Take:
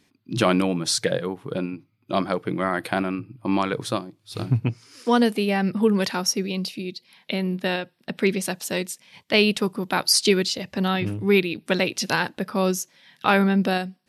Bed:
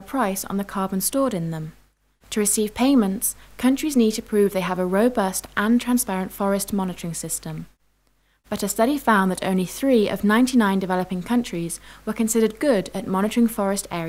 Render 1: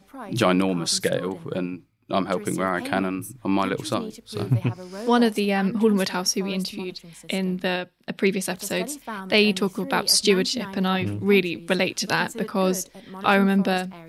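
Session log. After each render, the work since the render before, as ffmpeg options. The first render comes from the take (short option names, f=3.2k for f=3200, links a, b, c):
-filter_complex "[1:a]volume=-16dB[a];[0:a][a]amix=inputs=2:normalize=0"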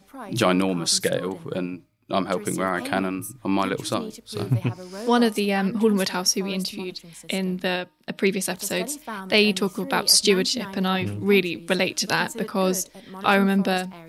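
-af "bass=f=250:g=-1,treble=f=4k:g=3,bandreject=f=306.1:t=h:w=4,bandreject=f=612.2:t=h:w=4,bandreject=f=918.3:t=h:w=4,bandreject=f=1.2244k:t=h:w=4"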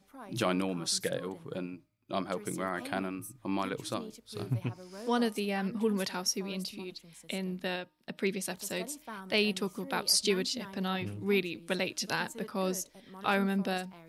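-af "volume=-10dB"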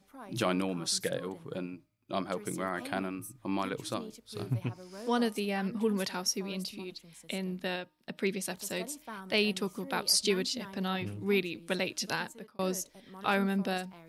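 -filter_complex "[0:a]asplit=2[a][b];[a]atrim=end=12.59,asetpts=PTS-STARTPTS,afade=t=out:st=12.1:d=0.49[c];[b]atrim=start=12.59,asetpts=PTS-STARTPTS,afade=t=in:d=0.004:c=hsin[d];[c][d]concat=n=2:v=0:a=1"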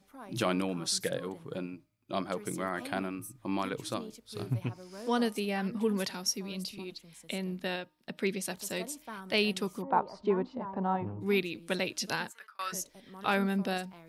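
-filter_complex "[0:a]asettb=1/sr,asplit=3[a][b][c];[a]atrim=end=6.104[d];[b]atrim=start=6.1:end=6.78,asetpts=PTS-STARTPTS,afade=t=in:d=0.004:c=qsin,afade=t=out:st=0.676:d=0.004:c=qsin,acrossover=split=230|3000[e][f][g];[f]acompressor=threshold=-48dB:ratio=1.5:attack=3.2:release=140:knee=2.83:detection=peak[h];[e][h][g]amix=inputs=3:normalize=0[i];[c]atrim=start=6.776[j];[d][i]acrossfade=d=0.004:c1=hsin:c2=qsin[k];[k][j]acrossfade=d=0.004:c1=qsin:c2=hsin,asplit=3[l][m][n];[l]afade=t=out:st=9.81:d=0.02[o];[m]lowpass=f=930:t=q:w=3.8,afade=t=in:st=9.81:d=0.02,afade=t=out:st=11.2:d=0.02[p];[n]afade=t=in:st=11.2:d=0.02[q];[o][p][q]amix=inputs=3:normalize=0,asplit=3[r][s][t];[r]afade=t=out:st=12.29:d=0.02[u];[s]highpass=f=1.4k:t=q:w=3.7,afade=t=in:st=12.29:d=0.02,afade=t=out:st=12.72:d=0.02[v];[t]afade=t=in:st=12.72:d=0.02[w];[u][v][w]amix=inputs=3:normalize=0"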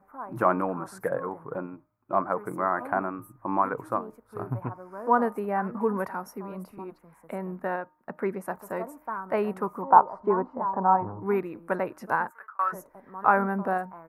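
-af "firequalizer=gain_entry='entry(190,0);entry(990,14);entry(1400,9);entry(3300,-29);entry(13000,-4)':delay=0.05:min_phase=1"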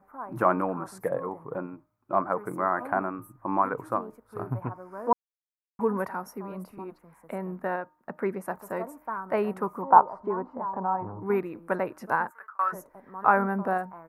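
-filter_complex "[0:a]asettb=1/sr,asplit=3[a][b][c];[a]atrim=end=0.914[d];[b]atrim=start=0.91:end=1.55,asetpts=PTS-STARTPTS,afade=t=in:d=0.004:c=qsin,afade=t=out:st=0.636:d=0.004:c=qsin,equalizer=f=1.5k:t=o:w=0.3:g=-11[e];[c]atrim=start=1.546[f];[d][e]acrossfade=d=0.004:c1=hsin:c2=qsin[g];[g][f]acrossfade=d=0.004:c1=qsin:c2=hsin,asettb=1/sr,asplit=3[h][i][j];[h]atrim=end=10.124[k];[i]atrim=start=10.12:end=11.3,asetpts=PTS-STARTPTS,afade=t=in:d=0.004:c=qsin,afade=t=out:st=1.176:d=0.004:c=qsin,acompressor=threshold=-34dB:ratio=1.5:attack=3.2:release=140:knee=1:detection=peak[l];[j]atrim=start=11.296[m];[k][l]acrossfade=d=0.004:c1=hsin:c2=qsin[n];[n][m]acrossfade=d=0.004:c1=qsin:c2=hsin,asplit=3[o][p][q];[o]atrim=end=5.13,asetpts=PTS-STARTPTS,afade=t=out:st=5.126:d=0.004:c=hsin[r];[p]atrim=start=5.13:end=5.79,asetpts=PTS-STARTPTS,volume=0[s];[q]atrim=start=5.79,asetpts=PTS-STARTPTS,afade=t=in:d=0.004:c=hsin[t];[r][s][t]concat=n=3:v=0:a=1"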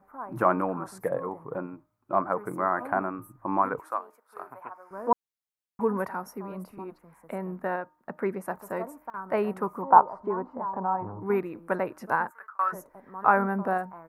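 -filter_complex "[0:a]asettb=1/sr,asplit=3[a][b][c];[a]atrim=end=3.794[d];[b]atrim=start=3.79:end=4.91,asetpts=PTS-STARTPTS,afade=t=in:d=0.004:c=qsin,afade=t=out:st=1.116:d=0.004:c=qsin,highpass=760[e];[c]atrim=start=4.906[f];[d][e]acrossfade=d=0.004:c1=hsin:c2=qsin[g];[g][f]acrossfade=d=0.004:c1=qsin:c2=hsin,asplit=3[h][i][j];[h]atrim=end=9.1,asetpts=PTS-STARTPTS,afade=t=out:st=8.85:d=0.25:c=log:silence=0.0891251[k];[i]atrim=start=9.1:end=9.14,asetpts=PTS-STARTPTS,volume=-21dB[l];[j]atrim=start=9.14,asetpts=PTS-STARTPTS,afade=t=in:d=0.25:c=log:silence=0.0891251[m];[k][l][m]concat=n=3:v=0:a=1"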